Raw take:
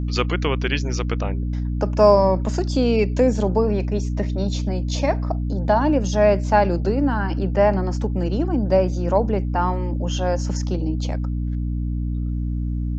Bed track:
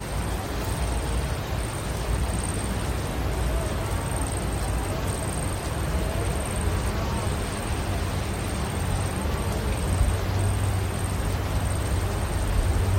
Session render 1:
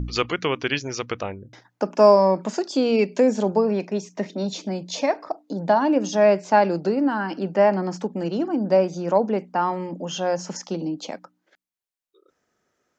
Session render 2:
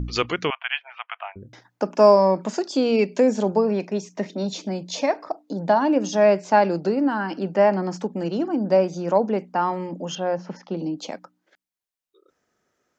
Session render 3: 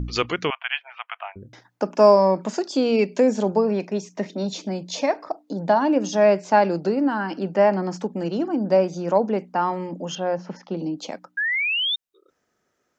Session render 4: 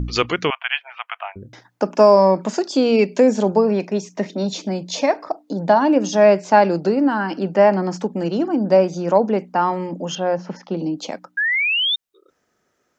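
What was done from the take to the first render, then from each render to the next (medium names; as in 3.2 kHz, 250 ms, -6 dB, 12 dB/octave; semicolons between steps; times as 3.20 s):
de-hum 60 Hz, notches 5
0.50–1.36 s: Chebyshev band-pass 680–3200 Hz, order 5; 10.15–10.77 s: distance through air 300 m
11.37–11.96 s: painted sound rise 1.6–3.7 kHz -23 dBFS
trim +4 dB; peak limiter -2 dBFS, peak gain reduction 3 dB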